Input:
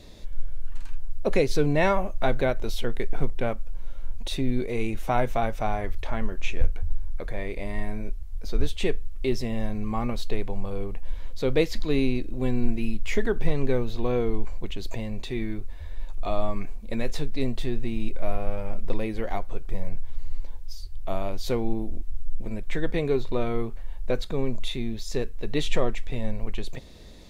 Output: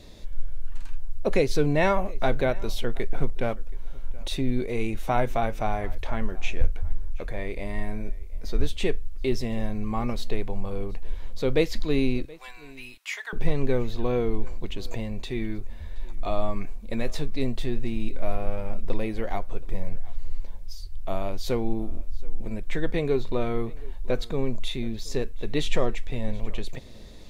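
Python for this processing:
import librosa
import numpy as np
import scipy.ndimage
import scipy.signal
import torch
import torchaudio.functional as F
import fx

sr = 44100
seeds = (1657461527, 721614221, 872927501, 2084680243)

y = fx.highpass(x, sr, hz=950.0, slope=24, at=(12.25, 13.33))
y = y + 10.0 ** (-23.0 / 20.0) * np.pad(y, (int(725 * sr / 1000.0), 0))[:len(y)]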